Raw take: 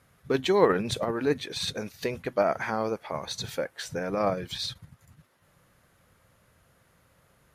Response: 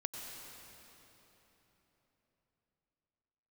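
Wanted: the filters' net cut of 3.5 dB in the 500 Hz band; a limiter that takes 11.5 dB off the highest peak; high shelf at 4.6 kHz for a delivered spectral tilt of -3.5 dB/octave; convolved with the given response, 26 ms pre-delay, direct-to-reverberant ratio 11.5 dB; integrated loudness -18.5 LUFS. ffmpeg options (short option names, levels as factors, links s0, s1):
-filter_complex "[0:a]equalizer=f=500:t=o:g=-4.5,highshelf=f=4600:g=6.5,alimiter=limit=0.0794:level=0:latency=1,asplit=2[s0][s1];[1:a]atrim=start_sample=2205,adelay=26[s2];[s1][s2]afir=irnorm=-1:irlink=0,volume=0.266[s3];[s0][s3]amix=inputs=2:normalize=0,volume=5.31"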